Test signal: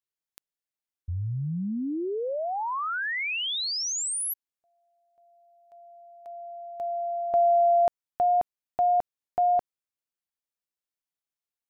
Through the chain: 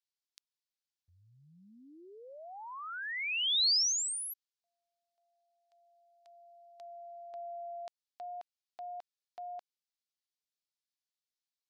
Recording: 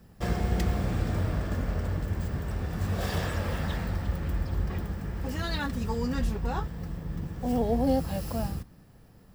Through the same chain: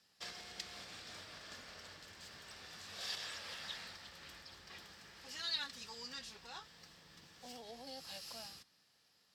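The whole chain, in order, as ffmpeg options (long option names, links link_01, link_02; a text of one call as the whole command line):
ffmpeg -i in.wav -af "alimiter=limit=-21.5dB:level=0:latency=1:release=137,bandpass=frequency=4500:width_type=q:width=1.7:csg=0,volume=3dB" out.wav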